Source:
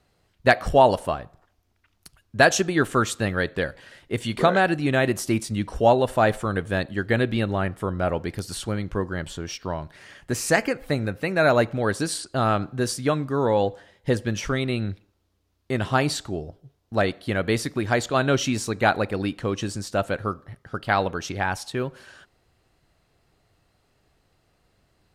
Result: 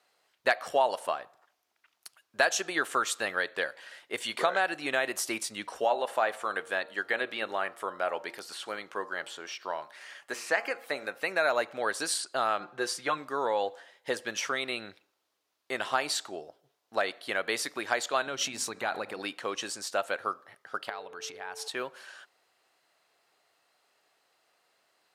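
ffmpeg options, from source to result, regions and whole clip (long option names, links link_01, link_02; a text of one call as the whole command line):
ffmpeg -i in.wav -filter_complex "[0:a]asettb=1/sr,asplit=3[link_01][link_02][link_03];[link_01]atrim=end=5.844[link_04];[link_02]atrim=start=5.84:end=11.19,asetpts=PTS-STARTPTS,afade=type=in:duration=0.004:curve=qsin,afade=type=out:start_time=5.346:duration=0.004:curve=qsin,acrossover=split=3600[link_05][link_06];[link_06]acompressor=threshold=-45dB:ratio=4:attack=1:release=60[link_07];[link_05][link_07]amix=inputs=2:normalize=0,lowshelf=frequency=160:gain=-10.5,bandreject=frequency=116.4:width_type=h:width=4,bandreject=frequency=232.8:width_type=h:width=4,bandreject=frequency=349.2:width_type=h:width=4,bandreject=frequency=465.6:width_type=h:width=4,bandreject=frequency=582:width_type=h:width=4,bandreject=frequency=698.4:width_type=h:width=4,bandreject=frequency=814.8:width_type=h:width=4,bandreject=frequency=931.2:width_type=h:width=4,bandreject=frequency=1047.6:width_type=h:width=4,bandreject=frequency=1164:width_type=h:width=4,bandreject=frequency=1280.4:width_type=h:width=4,bandreject=frequency=1396.8:width_type=h:width=4[link_08];[link_03]atrim=start=11.186[link_09];[link_04][link_08]acrossfade=duration=0.004:curve1=hsin:curve2=qsin[link_10];[link_10][link_09]acrossfade=duration=0.004:curve1=qsin:curve2=hsin,asettb=1/sr,asplit=3[link_11][link_12][link_13];[link_11]atrim=end=12.604[link_14];[link_12]atrim=start=12.6:end=13.18,asetpts=PTS-STARTPTS,afade=type=in:duration=0.004:curve=qsin,afade=type=out:start_time=0.576:duration=0.004:curve=qsin,aemphasis=mode=reproduction:type=cd,aecho=1:1:5.7:0.61,atrim=end_sample=25578[link_15];[link_13]atrim=start=13.176[link_16];[link_14][link_15]acrossfade=duration=0.004:curve1=hsin:curve2=qsin[link_17];[link_17][link_16]acrossfade=duration=0.004:curve1=qsin:curve2=hsin,asettb=1/sr,asplit=3[link_18][link_19][link_20];[link_18]atrim=end=18.274[link_21];[link_19]atrim=start=18.27:end=19.19,asetpts=PTS-STARTPTS,afade=type=in:duration=0.004:curve=qsin,afade=type=out:start_time=0.916:duration=0.004:curve=qsin,bass=frequency=250:gain=11,treble=frequency=4000:gain=0,acompressor=threshold=-19dB:ratio=12:attack=3.2:release=140:knee=1:detection=peak,bandreject=frequency=50:width_type=h:width=6,bandreject=frequency=100:width_type=h:width=6,bandreject=frequency=150:width_type=h:width=6,bandreject=frequency=200:width_type=h:width=6,bandreject=frequency=250:width_type=h:width=6[link_22];[link_20]atrim=start=19.186[link_23];[link_21][link_22]acrossfade=duration=0.004:curve1=hsin:curve2=qsin[link_24];[link_24][link_23]acrossfade=duration=0.004:curve1=qsin:curve2=hsin,asettb=1/sr,asplit=3[link_25][link_26][link_27];[link_25]atrim=end=20.894[link_28];[link_26]atrim=start=20.89:end=21.68,asetpts=PTS-STARTPTS,afade=type=in:duration=0.004:curve=qsin,afade=type=out:start_time=0.786:duration=0.004:curve=qsin,lowshelf=frequency=100:gain=10.5,acompressor=threshold=-32dB:ratio=12:attack=3.2:release=140:knee=1:detection=peak,aeval=exprs='val(0)+0.0112*sin(2*PI*440*n/s)':channel_layout=same[link_29];[link_27]atrim=start=21.676[link_30];[link_28][link_29]acrossfade=duration=0.004:curve1=hsin:curve2=qsin[link_31];[link_31][link_30]acrossfade=duration=0.004:curve1=qsin:curve2=hsin,highpass=650,acompressor=threshold=-26dB:ratio=2" out.wav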